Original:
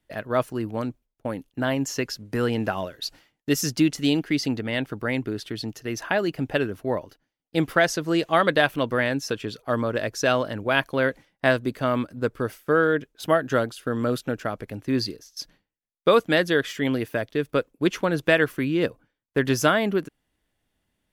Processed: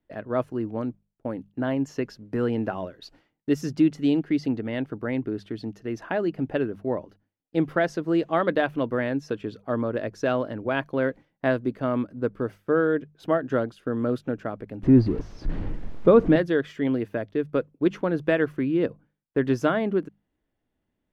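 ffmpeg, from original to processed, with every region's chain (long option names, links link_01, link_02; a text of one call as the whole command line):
ffmpeg -i in.wav -filter_complex "[0:a]asettb=1/sr,asplit=3[link_01][link_02][link_03];[link_01]atrim=end=14.834[link_04];[link_02]atrim=start=14.83:end=16.36,asetpts=PTS-STARTPTS,afade=type=in:duration=0.004:curve=qsin,afade=type=out:start_time=1.526:duration=0.004:curve=qsin,aeval=exprs='val(0)+0.5*0.0335*sgn(val(0))':channel_layout=same,aemphasis=mode=reproduction:type=riaa[link_05];[link_03]atrim=start=16.356[link_06];[link_04][link_05]acrossfade=duration=0.004:curve1=hsin:curve2=qsin[link_07];[link_07][link_06]acrossfade=duration=0.004:curve1=qsin:curve2=hsin,lowpass=frequency=1300:poles=1,equalizer=frequency=300:width_type=o:width=1.5:gain=4,bandreject=frequency=50:width_type=h:width=6,bandreject=frequency=100:width_type=h:width=6,bandreject=frequency=150:width_type=h:width=6,bandreject=frequency=200:width_type=h:width=6,volume=-3dB" out.wav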